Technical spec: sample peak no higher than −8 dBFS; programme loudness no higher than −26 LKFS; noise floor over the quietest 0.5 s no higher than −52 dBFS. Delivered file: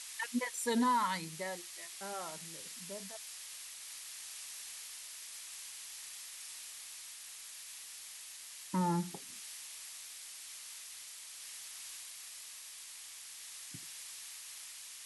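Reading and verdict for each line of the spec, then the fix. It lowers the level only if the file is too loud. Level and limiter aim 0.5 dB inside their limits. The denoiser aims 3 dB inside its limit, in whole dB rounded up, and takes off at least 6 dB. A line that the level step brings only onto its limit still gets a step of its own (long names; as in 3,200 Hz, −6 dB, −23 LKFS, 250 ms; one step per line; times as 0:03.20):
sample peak −22.0 dBFS: in spec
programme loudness −41.0 LKFS: in spec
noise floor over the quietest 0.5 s −50 dBFS: out of spec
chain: broadband denoise 6 dB, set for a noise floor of −50 dBFS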